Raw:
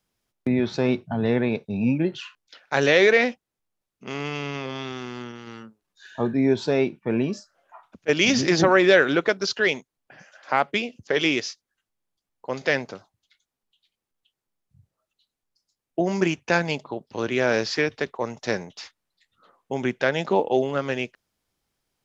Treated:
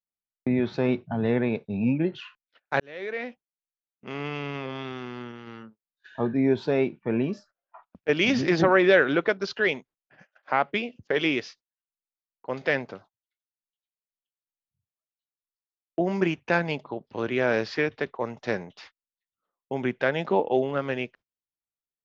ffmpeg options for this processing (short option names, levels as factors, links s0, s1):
-filter_complex "[0:a]asplit=2[s0][s1];[s0]atrim=end=2.8,asetpts=PTS-STARTPTS,afade=t=out:st=2.796:d=0.004:c=hsin[s2];[s1]atrim=start=2.8,asetpts=PTS-STARTPTS,afade=t=in:d=1.46[s3];[s2][s3]concat=n=2:v=0:a=1,lowpass=3200,agate=range=0.0562:threshold=0.00398:ratio=16:detection=peak,volume=0.794"